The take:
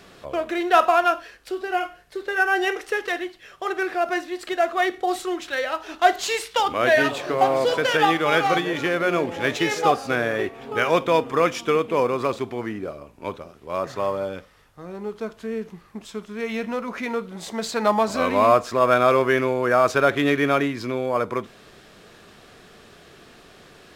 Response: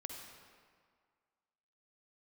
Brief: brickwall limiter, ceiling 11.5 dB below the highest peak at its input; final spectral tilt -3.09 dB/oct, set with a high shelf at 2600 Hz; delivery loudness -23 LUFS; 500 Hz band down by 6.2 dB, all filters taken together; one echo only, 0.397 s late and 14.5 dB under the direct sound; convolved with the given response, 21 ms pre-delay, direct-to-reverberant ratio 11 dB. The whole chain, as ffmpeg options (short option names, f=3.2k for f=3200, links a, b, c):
-filter_complex "[0:a]equalizer=f=500:t=o:g=-8.5,highshelf=f=2.6k:g=5.5,alimiter=limit=-16dB:level=0:latency=1,aecho=1:1:397:0.188,asplit=2[a][b];[1:a]atrim=start_sample=2205,adelay=21[c];[b][c]afir=irnorm=-1:irlink=0,volume=-8.5dB[d];[a][d]amix=inputs=2:normalize=0,volume=4dB"